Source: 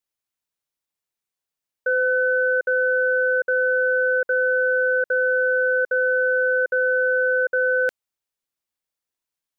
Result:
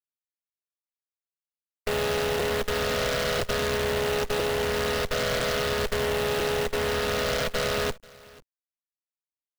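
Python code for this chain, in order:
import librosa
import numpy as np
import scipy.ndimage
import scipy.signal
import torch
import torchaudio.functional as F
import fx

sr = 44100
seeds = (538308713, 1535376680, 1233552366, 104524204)

p1 = fx.chord_vocoder(x, sr, chord='minor triad', root=49)
p2 = fx.over_compress(p1, sr, threshold_db=-22.0, ratio=-0.5)
p3 = p1 + (p2 * librosa.db_to_amplitude(-3.0))
p4 = fx.cheby_harmonics(p3, sr, harmonics=(8,), levels_db=(-12,), full_scale_db=-5.0)
p5 = fx.peak_eq(p4, sr, hz=1100.0, db=-9.5, octaves=2.2)
p6 = p5 + fx.echo_single(p5, sr, ms=489, db=-23.0, dry=0)
p7 = fx.quant_companded(p6, sr, bits=4)
p8 = fx.peak_eq(p7, sr, hz=320.0, db=-12.0, octaves=0.22)
p9 = fx.buffer_crackle(p8, sr, first_s=0.39, period_s=1.0, block=256, kind='repeat')
y = p9 * librosa.db_to_amplitude(-6.5)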